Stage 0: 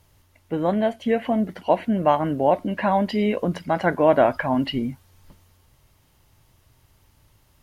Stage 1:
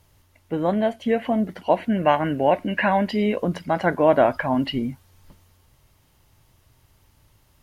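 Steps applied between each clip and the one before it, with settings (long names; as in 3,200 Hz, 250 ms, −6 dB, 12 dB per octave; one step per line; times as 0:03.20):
gain on a spectral selection 0:01.90–0:03.08, 1,400–3,000 Hz +8 dB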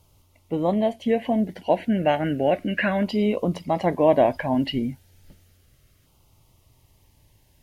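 auto-filter notch saw down 0.33 Hz 860–1,800 Hz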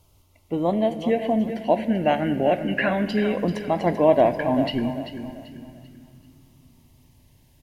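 repeating echo 389 ms, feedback 34%, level −10.5 dB
on a send at −11 dB: convolution reverb RT60 2.6 s, pre-delay 3 ms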